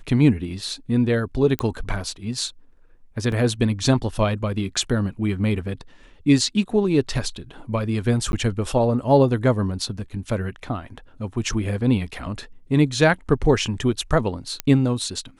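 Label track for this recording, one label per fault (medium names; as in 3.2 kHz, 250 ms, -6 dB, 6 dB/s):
1.590000	1.590000	pop -9 dBFS
3.320000	3.320000	dropout 2.8 ms
8.320000	8.330000	dropout 11 ms
14.600000	14.600000	pop -7 dBFS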